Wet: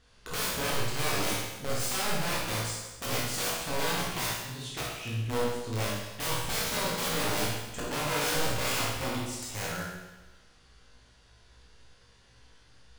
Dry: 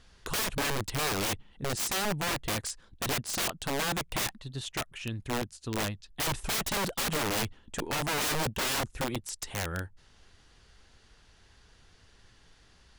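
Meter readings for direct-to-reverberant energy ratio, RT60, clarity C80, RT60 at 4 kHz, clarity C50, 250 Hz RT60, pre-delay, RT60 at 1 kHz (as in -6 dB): -6.0 dB, 1.1 s, 3.0 dB, 1.1 s, 0.0 dB, 1.1 s, 17 ms, 1.1 s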